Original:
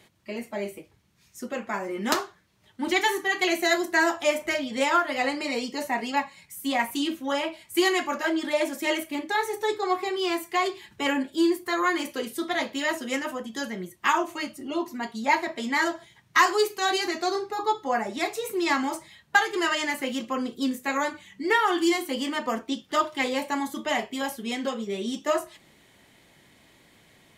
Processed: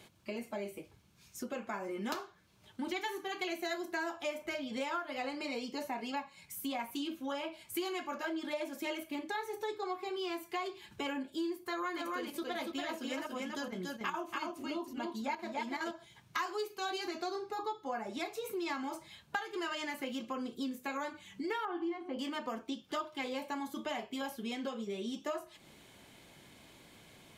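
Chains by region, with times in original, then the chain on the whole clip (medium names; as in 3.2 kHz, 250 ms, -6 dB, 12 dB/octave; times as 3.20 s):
11.64–15.91 s: square tremolo 2.4 Hz, depth 60%, duty 90% + delay 284 ms -4 dB
21.65–22.19 s: low-pass 1.5 kHz + de-hum 45.5 Hz, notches 25
whole clip: dynamic bell 8.5 kHz, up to -6 dB, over -50 dBFS, Q 1.1; band-stop 1.9 kHz, Q 8; compression 3:1, threshold -39 dBFS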